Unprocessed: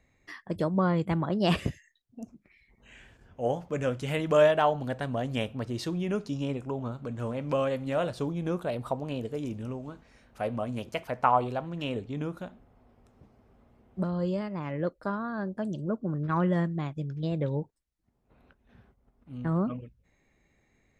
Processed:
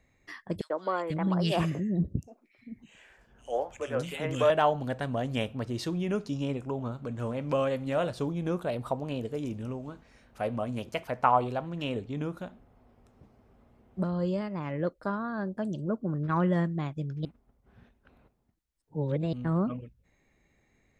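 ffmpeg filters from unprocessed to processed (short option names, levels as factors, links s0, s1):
-filter_complex "[0:a]asettb=1/sr,asplit=3[s0][s1][s2];[s0]atrim=end=0.614[s3];[s1]atrim=start=0.61:end=4.5,asetpts=PTS-STARTPTS,afade=t=in:d=0.004:c=qsin,afade=t=out:st=3.886:d=0.004:c=qsin,acrossover=split=350|2300[s4][s5][s6];[s5]adelay=90[s7];[s4]adelay=490[s8];[s8][s7][s6]amix=inputs=3:normalize=0,atrim=end_sample=171549[s9];[s2]atrim=start=4.496[s10];[s3][s9]acrossfade=d=0.004:c1=hsin:c2=qsin[s11];[s11][s10]acrossfade=d=0.004:c1=qsin:c2=hsin,asplit=3[s12][s13][s14];[s12]atrim=end=17.252[s15];[s13]atrim=start=17.248:end=19.332,asetpts=PTS-STARTPTS,areverse[s16];[s14]atrim=start=19.328[s17];[s15][s16]acrossfade=d=0.004:c1=hsin:c2=hsin[s18];[s18][s17]acrossfade=d=0.004:c1=hsin:c2=hsin"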